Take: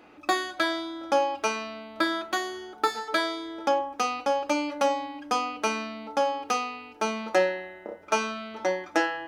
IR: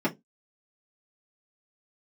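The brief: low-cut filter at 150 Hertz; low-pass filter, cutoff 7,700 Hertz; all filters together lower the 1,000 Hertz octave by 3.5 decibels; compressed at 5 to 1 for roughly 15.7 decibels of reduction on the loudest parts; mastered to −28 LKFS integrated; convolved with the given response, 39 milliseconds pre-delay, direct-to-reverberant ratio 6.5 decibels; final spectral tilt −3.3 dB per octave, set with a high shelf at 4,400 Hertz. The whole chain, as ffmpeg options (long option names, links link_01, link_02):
-filter_complex "[0:a]highpass=150,lowpass=7700,equalizer=frequency=1000:width_type=o:gain=-5,highshelf=frequency=4400:gain=6,acompressor=threshold=-39dB:ratio=5,asplit=2[link_01][link_02];[1:a]atrim=start_sample=2205,adelay=39[link_03];[link_02][link_03]afir=irnorm=-1:irlink=0,volume=-17dB[link_04];[link_01][link_04]amix=inputs=2:normalize=0,volume=11.5dB"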